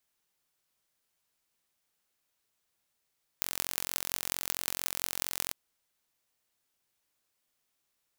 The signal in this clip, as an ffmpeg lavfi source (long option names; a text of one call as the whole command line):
ffmpeg -f lavfi -i "aevalsrc='0.891*eq(mod(n,993),0)*(0.5+0.5*eq(mod(n,7944),0))':duration=2.1:sample_rate=44100" out.wav